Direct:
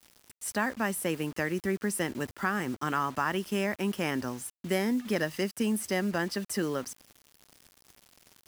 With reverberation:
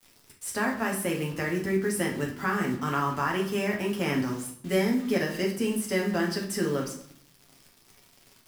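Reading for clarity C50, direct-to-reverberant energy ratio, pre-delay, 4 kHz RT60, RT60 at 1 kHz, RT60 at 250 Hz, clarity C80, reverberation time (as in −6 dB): 7.0 dB, −1.5 dB, 7 ms, 0.55 s, 0.60 s, 0.85 s, 12.0 dB, 0.60 s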